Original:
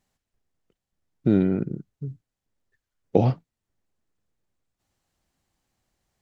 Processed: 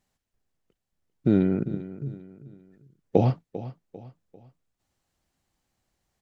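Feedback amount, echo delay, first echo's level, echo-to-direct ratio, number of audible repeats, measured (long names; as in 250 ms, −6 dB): 38%, 396 ms, −15.0 dB, −14.5 dB, 3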